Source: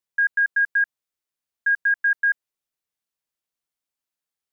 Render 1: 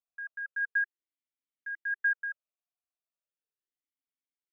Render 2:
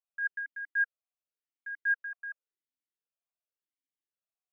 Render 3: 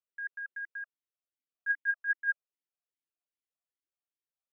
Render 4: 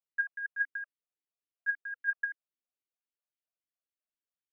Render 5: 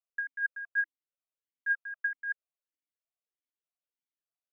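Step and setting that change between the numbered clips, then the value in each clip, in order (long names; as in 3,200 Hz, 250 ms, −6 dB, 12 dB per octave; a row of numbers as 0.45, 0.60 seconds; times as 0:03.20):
formant filter swept between two vowels, speed: 0.36, 0.91, 2.5, 3.7, 1.6 Hertz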